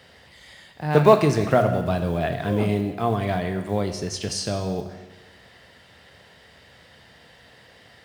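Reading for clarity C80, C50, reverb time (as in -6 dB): 10.5 dB, 8.5 dB, 1.2 s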